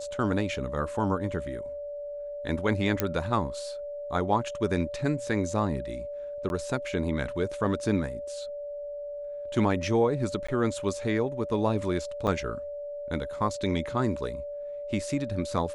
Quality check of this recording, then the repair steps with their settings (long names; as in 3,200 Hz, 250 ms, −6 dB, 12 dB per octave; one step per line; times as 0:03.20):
whistle 580 Hz −34 dBFS
0:03.00: click −8 dBFS
0:06.49–0:06.50: drop-out 11 ms
0:10.47–0:10.48: drop-out 15 ms
0:12.27–0:12.28: drop-out 5.5 ms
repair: click removal
notch filter 580 Hz, Q 30
repair the gap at 0:06.49, 11 ms
repair the gap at 0:10.47, 15 ms
repair the gap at 0:12.27, 5.5 ms